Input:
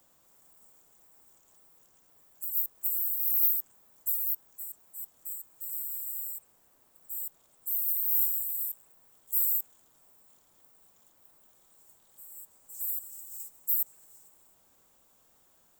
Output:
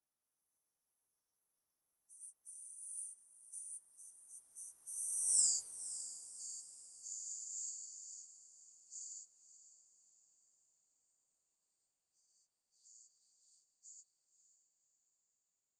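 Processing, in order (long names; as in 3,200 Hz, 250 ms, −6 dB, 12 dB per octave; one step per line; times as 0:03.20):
hearing-aid frequency compression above 2,300 Hz 1.5 to 1
source passing by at 0:05.41, 45 m/s, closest 4.8 metres
feedback delay with all-pass diffusion 553 ms, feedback 46%, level −13 dB
level +6 dB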